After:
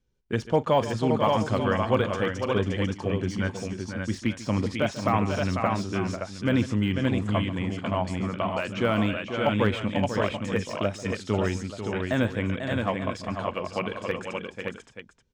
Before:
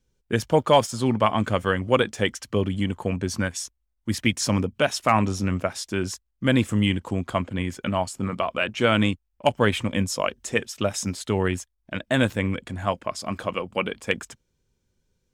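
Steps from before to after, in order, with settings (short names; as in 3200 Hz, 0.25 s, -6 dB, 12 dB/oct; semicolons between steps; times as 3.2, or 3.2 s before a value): air absorption 88 m; tapped delay 42/142/493/530/570/882 ms -19.5/-16.5/-8.5/-19/-5/-14 dB; de-esser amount 85%; gain -3 dB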